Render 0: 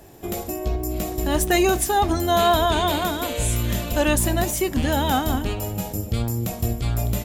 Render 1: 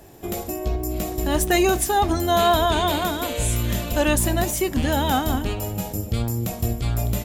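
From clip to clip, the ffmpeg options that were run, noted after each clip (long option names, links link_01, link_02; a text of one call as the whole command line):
ffmpeg -i in.wav -af anull out.wav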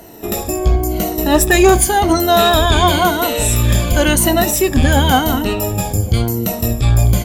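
ffmpeg -i in.wav -af "afftfilt=real='re*pow(10,12/40*sin(2*PI*(1.9*log(max(b,1)*sr/1024/100)/log(2)-(-0.94)*(pts-256)/sr)))':imag='im*pow(10,12/40*sin(2*PI*(1.9*log(max(b,1)*sr/1024/100)/log(2)-(-0.94)*(pts-256)/sr)))':win_size=1024:overlap=0.75,acontrast=74,volume=1dB" out.wav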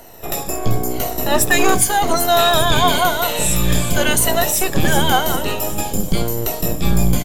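ffmpeg -i in.wav -filter_complex "[0:a]acrossover=split=460|3400[link_01][link_02][link_03];[link_01]aeval=exprs='abs(val(0))':channel_layout=same[link_04];[link_03]aecho=1:1:388|776|1164|1552|1940|2328|2716:0.316|0.183|0.106|0.0617|0.0358|0.0208|0.012[link_05];[link_04][link_02][link_05]amix=inputs=3:normalize=0,volume=-1dB" out.wav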